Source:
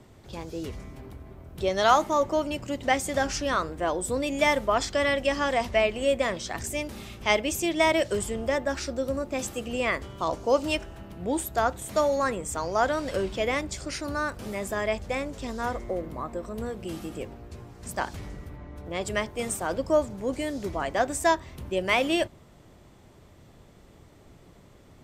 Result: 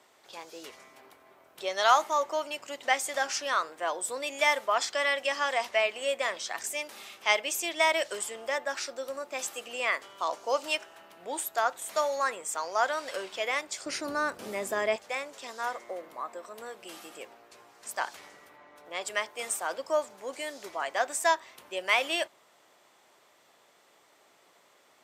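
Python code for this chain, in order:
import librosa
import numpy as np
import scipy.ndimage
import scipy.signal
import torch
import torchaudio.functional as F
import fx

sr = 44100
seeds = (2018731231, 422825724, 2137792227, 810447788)

y = fx.highpass(x, sr, hz=fx.steps((0.0, 750.0), (13.86, 310.0), (14.96, 750.0)), slope=12)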